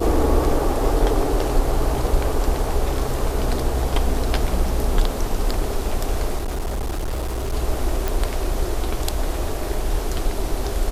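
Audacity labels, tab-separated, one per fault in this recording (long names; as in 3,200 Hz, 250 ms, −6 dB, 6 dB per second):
6.360000	7.540000	clipping −21 dBFS
8.080000	8.080000	click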